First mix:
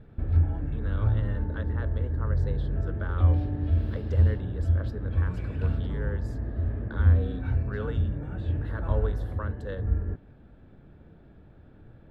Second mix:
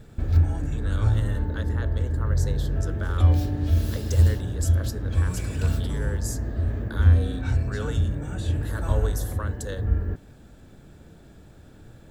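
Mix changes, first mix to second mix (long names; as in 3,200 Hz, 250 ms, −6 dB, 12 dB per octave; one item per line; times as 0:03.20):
background +3.0 dB
master: remove high-frequency loss of the air 430 metres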